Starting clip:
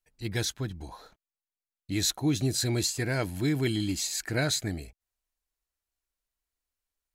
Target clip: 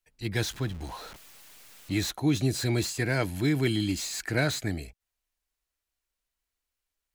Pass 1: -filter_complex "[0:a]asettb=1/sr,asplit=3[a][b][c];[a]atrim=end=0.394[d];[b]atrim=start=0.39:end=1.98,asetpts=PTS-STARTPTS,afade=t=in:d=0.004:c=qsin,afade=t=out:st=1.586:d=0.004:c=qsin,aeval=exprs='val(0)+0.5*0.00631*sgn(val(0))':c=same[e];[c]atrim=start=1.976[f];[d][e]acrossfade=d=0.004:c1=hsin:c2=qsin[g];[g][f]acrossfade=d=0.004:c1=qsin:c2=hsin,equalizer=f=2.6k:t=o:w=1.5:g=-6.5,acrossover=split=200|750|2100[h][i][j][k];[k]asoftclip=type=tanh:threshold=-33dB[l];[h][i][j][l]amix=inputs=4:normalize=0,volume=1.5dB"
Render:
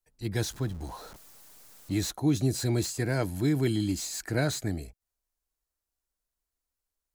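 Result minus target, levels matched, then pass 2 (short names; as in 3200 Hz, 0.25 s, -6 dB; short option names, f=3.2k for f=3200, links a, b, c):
2000 Hz band -5.0 dB
-filter_complex "[0:a]asettb=1/sr,asplit=3[a][b][c];[a]atrim=end=0.394[d];[b]atrim=start=0.39:end=1.98,asetpts=PTS-STARTPTS,afade=t=in:d=0.004:c=qsin,afade=t=out:st=1.586:d=0.004:c=qsin,aeval=exprs='val(0)+0.5*0.00631*sgn(val(0))':c=same[e];[c]atrim=start=1.976[f];[d][e]acrossfade=d=0.004:c1=hsin:c2=qsin[g];[g][f]acrossfade=d=0.004:c1=qsin:c2=hsin,equalizer=f=2.6k:t=o:w=1.5:g=3,acrossover=split=200|750|2100[h][i][j][k];[k]asoftclip=type=tanh:threshold=-33dB[l];[h][i][j][l]amix=inputs=4:normalize=0,volume=1.5dB"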